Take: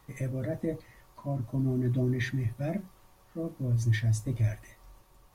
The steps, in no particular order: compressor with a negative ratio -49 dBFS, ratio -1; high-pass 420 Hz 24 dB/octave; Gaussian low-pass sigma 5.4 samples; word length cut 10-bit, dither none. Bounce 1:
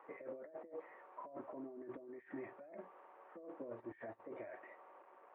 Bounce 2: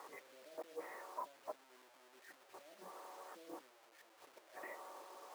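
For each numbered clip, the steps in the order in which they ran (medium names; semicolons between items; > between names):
word length cut > high-pass > compressor with a negative ratio > Gaussian low-pass; compressor with a negative ratio > Gaussian low-pass > word length cut > high-pass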